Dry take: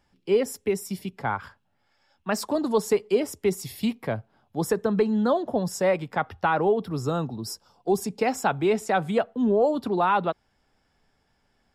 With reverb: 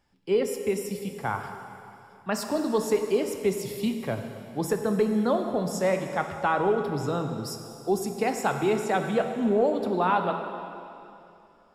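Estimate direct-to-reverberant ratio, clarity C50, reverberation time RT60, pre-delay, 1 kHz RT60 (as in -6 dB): 5.0 dB, 6.0 dB, 2.8 s, 6 ms, 2.8 s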